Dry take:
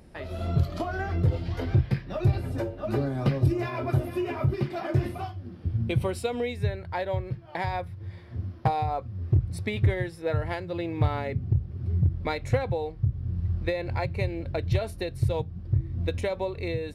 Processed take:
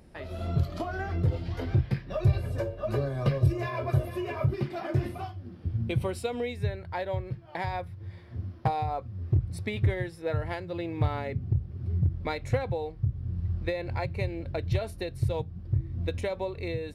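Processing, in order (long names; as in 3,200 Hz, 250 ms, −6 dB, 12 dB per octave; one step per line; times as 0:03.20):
0:02.10–0:04.47: comb filter 1.8 ms, depth 59%
level −2.5 dB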